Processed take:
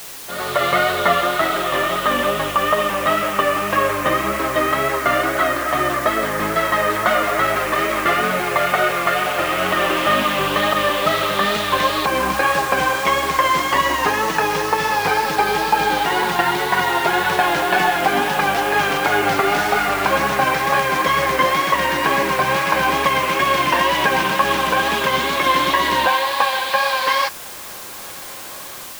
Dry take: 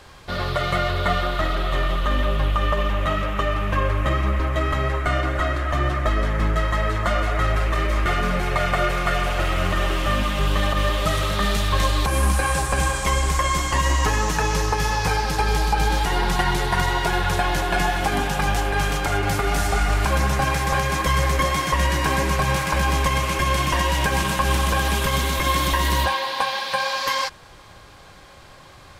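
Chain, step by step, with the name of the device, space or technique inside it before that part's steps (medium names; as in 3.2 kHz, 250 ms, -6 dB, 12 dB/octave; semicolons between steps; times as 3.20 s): dictaphone (band-pass 270–3800 Hz; level rider; wow and flutter; white noise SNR 16 dB); trim -2 dB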